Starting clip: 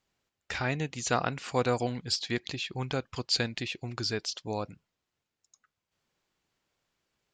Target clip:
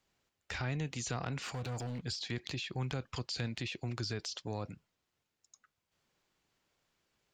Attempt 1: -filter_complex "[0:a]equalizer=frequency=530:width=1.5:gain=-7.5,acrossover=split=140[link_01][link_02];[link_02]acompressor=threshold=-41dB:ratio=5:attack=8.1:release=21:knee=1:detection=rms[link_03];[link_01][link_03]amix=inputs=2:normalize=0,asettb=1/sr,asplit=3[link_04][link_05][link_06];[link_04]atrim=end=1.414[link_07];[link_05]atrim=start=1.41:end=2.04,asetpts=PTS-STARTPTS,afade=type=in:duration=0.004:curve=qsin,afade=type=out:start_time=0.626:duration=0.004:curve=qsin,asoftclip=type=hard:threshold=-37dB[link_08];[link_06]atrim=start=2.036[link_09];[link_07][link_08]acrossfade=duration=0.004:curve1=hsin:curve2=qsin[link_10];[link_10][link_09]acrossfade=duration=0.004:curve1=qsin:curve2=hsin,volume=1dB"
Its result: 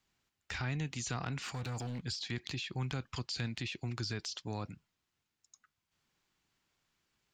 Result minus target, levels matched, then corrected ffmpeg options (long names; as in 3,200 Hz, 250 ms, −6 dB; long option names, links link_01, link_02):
500 Hz band −3.0 dB
-filter_complex "[0:a]acrossover=split=140[link_01][link_02];[link_02]acompressor=threshold=-41dB:ratio=5:attack=8.1:release=21:knee=1:detection=rms[link_03];[link_01][link_03]amix=inputs=2:normalize=0,asettb=1/sr,asplit=3[link_04][link_05][link_06];[link_04]atrim=end=1.414[link_07];[link_05]atrim=start=1.41:end=2.04,asetpts=PTS-STARTPTS,afade=type=in:duration=0.004:curve=qsin,afade=type=out:start_time=0.626:duration=0.004:curve=qsin,asoftclip=type=hard:threshold=-37dB[link_08];[link_06]atrim=start=2.036[link_09];[link_07][link_08]acrossfade=duration=0.004:curve1=hsin:curve2=qsin[link_10];[link_10][link_09]acrossfade=duration=0.004:curve1=qsin:curve2=hsin,volume=1dB"